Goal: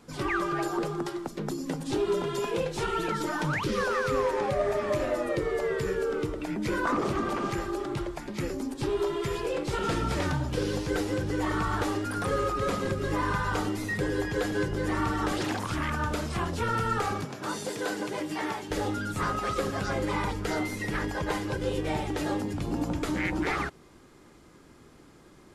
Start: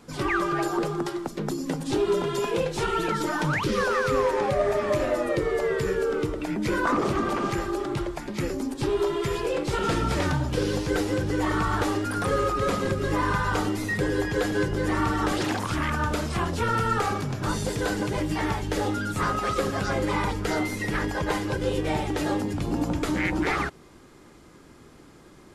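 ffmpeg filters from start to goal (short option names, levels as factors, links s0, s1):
-filter_complex "[0:a]asettb=1/sr,asplit=3[s0][s1][s2];[s0]atrim=end=17.254[s3];[s1]atrim=start=17.25:end=18.71,asetpts=PTS-STARTPTS,afade=t=in:d=0.004:c=qsin,afade=t=out:st=1.456:d=0.004:c=qsin,highpass=250[s4];[s2]atrim=start=18.706[s5];[s3][s4]acrossfade=d=0.004:c1=hsin:c2=qsin[s6];[s6][s5]acrossfade=d=0.004:c1=qsin:c2=hsin,volume=0.668"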